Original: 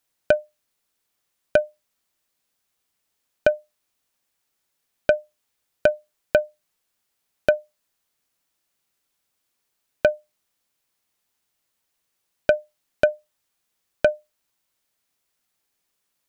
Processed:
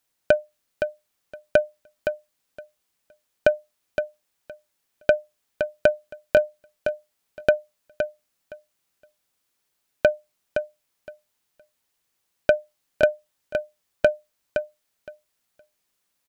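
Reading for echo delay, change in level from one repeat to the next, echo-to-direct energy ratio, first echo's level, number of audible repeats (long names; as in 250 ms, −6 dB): 516 ms, −16.0 dB, −7.5 dB, −7.5 dB, 2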